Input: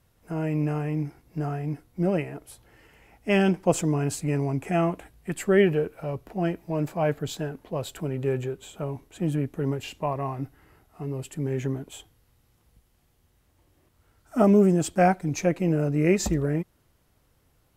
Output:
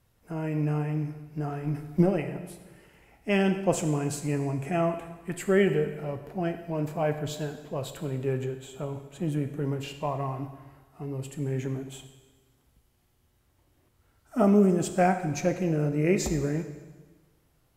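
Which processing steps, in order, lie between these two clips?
1.48–2.11 s: transient shaper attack +12 dB, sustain +8 dB; plate-style reverb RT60 1.3 s, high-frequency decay 0.95×, DRR 7 dB; trim -3 dB

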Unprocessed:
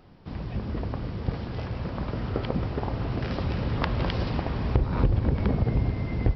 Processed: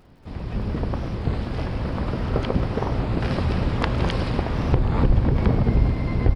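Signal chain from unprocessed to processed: hum notches 50/100/150 Hz; on a send: tape echo 787 ms, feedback 36%, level -16 dB, low-pass 3.3 kHz; on the sum: crackle 86 per s -54 dBFS; feedback delay 106 ms, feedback 31%, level -17 dB; level rider gain up to 4.5 dB; harmony voices -12 st -3 dB, +12 st -16 dB; warped record 33 1/3 rpm, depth 160 cents

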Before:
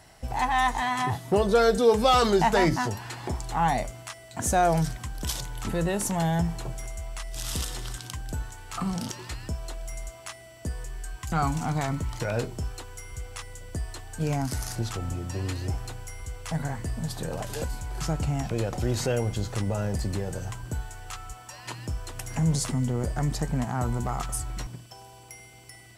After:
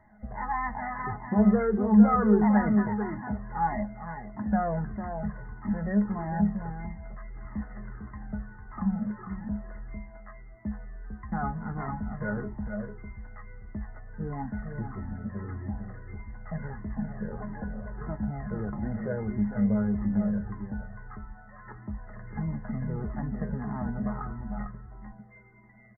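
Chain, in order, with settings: brick-wall FIR low-pass 2.1 kHz; peaking EQ 210 Hz +15 dB 0.3 oct; feedback comb 210 Hz, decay 0.17 s, harmonics all, mix 80%; on a send: delay 451 ms -6.5 dB; on the sum: Shepard-style flanger falling 1.6 Hz; trim +6 dB

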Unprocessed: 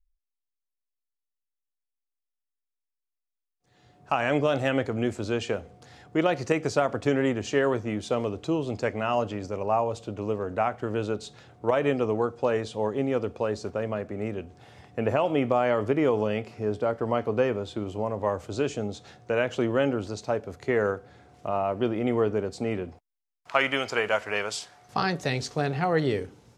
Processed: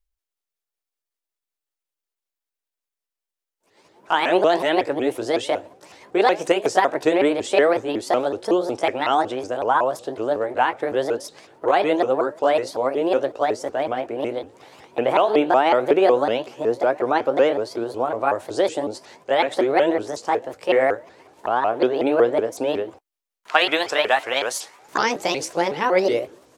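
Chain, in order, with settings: sawtooth pitch modulation +6.5 st, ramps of 185 ms; resonant low shelf 240 Hz -11.5 dB, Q 1.5; trim +6.5 dB

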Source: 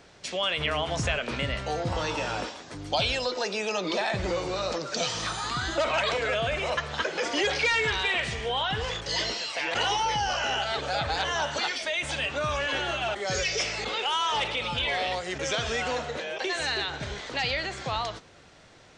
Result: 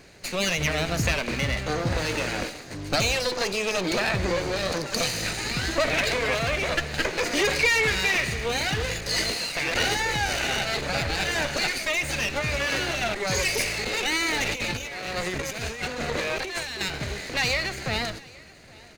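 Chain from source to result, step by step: comb filter that takes the minimum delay 0.45 ms; 14.46–16.81 s: compressor with a negative ratio -34 dBFS, ratio -0.5; delay 822 ms -23.5 dB; trim +4.5 dB

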